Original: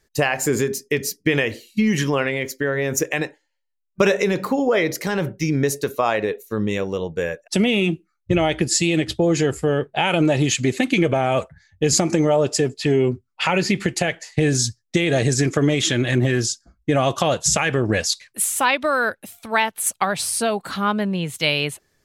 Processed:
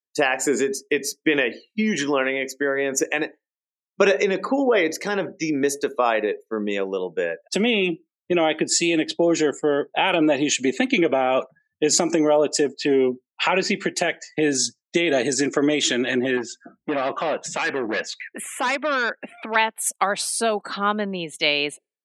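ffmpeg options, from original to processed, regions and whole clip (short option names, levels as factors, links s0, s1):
-filter_complex "[0:a]asettb=1/sr,asplit=3[s0][s1][s2];[s0]atrim=end=16.374[s3];[s1]atrim=start=16.37:end=19.56,asetpts=PTS-STARTPTS,afade=t=in:d=0.004:c=qsin,afade=t=out:st=3.186:d=0.004:c=qsin,highshelf=f=3300:t=q:w=1.5:g=-13,acompressor=mode=upward:threshold=0.0794:ratio=2.5:attack=3.2:release=140:knee=2.83:detection=peak,volume=9.44,asoftclip=hard,volume=0.106[s4];[s2]atrim=start=19.556[s5];[s3][s4]acrossfade=d=0.004:c1=hsin:c2=qsin[s6];[s6][s5]acrossfade=d=0.004:c1=qsin:c2=hsin,lowpass=10000,afftdn=nr=35:nf=-42,highpass=f=230:w=0.5412,highpass=f=230:w=1.3066"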